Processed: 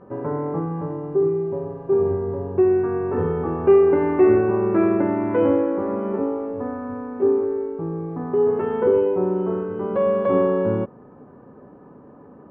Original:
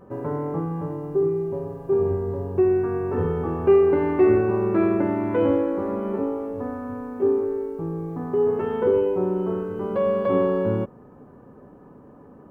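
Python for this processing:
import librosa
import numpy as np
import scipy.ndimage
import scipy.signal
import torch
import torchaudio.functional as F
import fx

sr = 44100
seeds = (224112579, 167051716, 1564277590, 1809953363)

y = scipy.signal.sosfilt(scipy.signal.butter(2, 2500.0, 'lowpass', fs=sr, output='sos'), x)
y = fx.low_shelf(y, sr, hz=66.0, db=-11.5)
y = F.gain(torch.from_numpy(y), 2.5).numpy()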